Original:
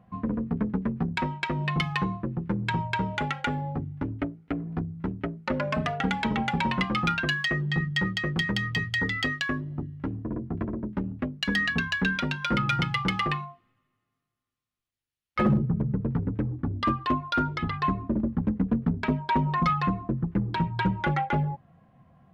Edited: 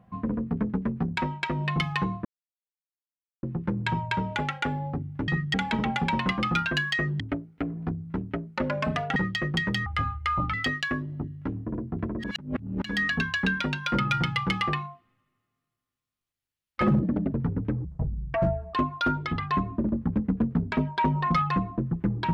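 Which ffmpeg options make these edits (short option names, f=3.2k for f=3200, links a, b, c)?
-filter_complex "[0:a]asplit=14[a][b][c][d][e][f][g][h][i][j][k][l][m][n];[a]atrim=end=2.25,asetpts=PTS-STARTPTS,afade=t=out:st=2.246:d=0.004:c=hsin,apad=pad_dur=1.18[o];[b]atrim=start=2.25:end=4.102,asetpts=PTS-STARTPTS,afade=t=in:d=0.004:c=hsin[p];[c]atrim=start=7.718:end=7.982[q];[d]atrim=start=6.058:end=7.722[r];[e]atrim=start=4.098:end=6.062[s];[f]atrim=start=7.978:end=8.684[t];[g]atrim=start=8.68:end=9.12,asetpts=PTS-STARTPTS,asetrate=28665,aresample=44100,atrim=end_sample=29852,asetpts=PTS-STARTPTS[u];[h]atrim=start=9.116:end=11.01[v];[i]atrim=start=10.77:end=11.6,asetpts=PTS-STARTPTS,areverse[w];[j]atrim=start=11.36:end=15.614[x];[k]atrim=start=15.61:end=16.03,asetpts=PTS-STARTPTS,asetrate=62181,aresample=44100,atrim=end_sample=13136,asetpts=PTS-STARTPTS[y];[l]atrim=start=16.026:end=16.554[z];[m]atrim=start=16.55:end=17.05,asetpts=PTS-STARTPTS,asetrate=24696,aresample=44100[aa];[n]atrim=start=17.046[ab];[o][p]concat=n=2:v=0:a=1[ac];[ac][q]acrossfade=d=0.004:c1=hsin:c2=hsin[ad];[ad][r]acrossfade=d=0.004:c1=hsin:c2=hsin[ae];[ae][s]acrossfade=d=0.004:c1=hsin:c2=hsin[af];[af][t]acrossfade=d=0.004:c1=hsin:c2=hsin[ag];[ag][u]acrossfade=d=0.004:c1=hsin:c2=hsin[ah];[ah][v]acrossfade=d=0.004:c1=hsin:c2=hsin[ai];[ai][w]acrossfade=d=0.24:c1=tri:c2=tri[aj];[aj][x]acrossfade=d=0.24:c1=tri:c2=tri[ak];[ak][y]acrossfade=d=0.004:c1=hsin:c2=hsin[al];[al][z]acrossfade=d=0.004:c1=hsin:c2=hsin[am];[am][aa]acrossfade=d=0.004:c1=hsin:c2=hsin[an];[an][ab]acrossfade=d=0.004:c1=hsin:c2=hsin"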